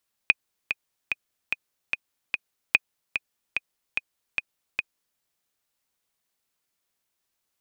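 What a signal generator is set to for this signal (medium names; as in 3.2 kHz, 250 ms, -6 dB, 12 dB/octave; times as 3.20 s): metronome 147 bpm, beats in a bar 6, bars 2, 2.49 kHz, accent 8.5 dB -3 dBFS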